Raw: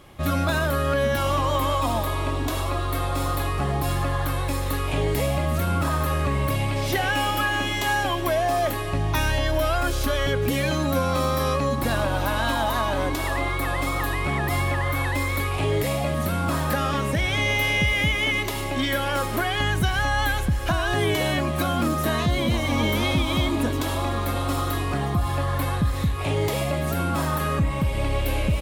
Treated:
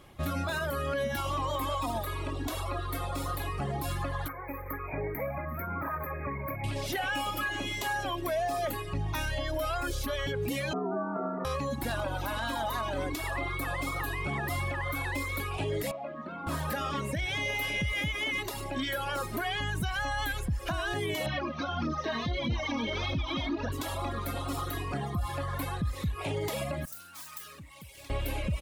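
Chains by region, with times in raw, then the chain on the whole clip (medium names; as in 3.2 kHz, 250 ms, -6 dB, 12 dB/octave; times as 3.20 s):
4.28–6.64 s: brick-wall FIR band-stop 2.5–12 kHz + bass shelf 350 Hz -6 dB
10.73–11.45 s: low-pass 1.2 kHz 24 dB/octave + frequency shift +110 Hz
15.91–16.47 s: high-pass 260 Hz + tape spacing loss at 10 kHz 33 dB
21.26–23.72 s: Chebyshev low-pass 6.2 kHz, order 8 + phaser 1.6 Hz, delay 4.6 ms, feedback 43%
26.85–28.10 s: self-modulated delay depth 0.19 ms + high-pass 63 Hz + pre-emphasis filter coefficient 0.9
whole clip: reverb removal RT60 1.4 s; peak limiter -18.5 dBFS; trim -5 dB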